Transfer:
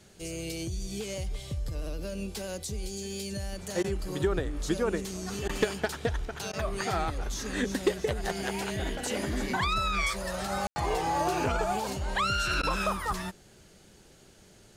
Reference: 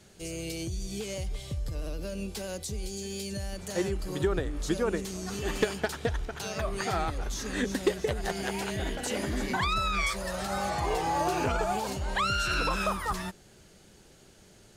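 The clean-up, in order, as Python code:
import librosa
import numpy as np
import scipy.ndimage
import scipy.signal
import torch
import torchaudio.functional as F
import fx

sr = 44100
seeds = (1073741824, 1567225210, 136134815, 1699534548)

y = fx.fix_ambience(x, sr, seeds[0], print_start_s=13.96, print_end_s=14.46, start_s=10.67, end_s=10.76)
y = fx.fix_interpolate(y, sr, at_s=(3.83, 5.48, 6.52, 12.62), length_ms=11.0)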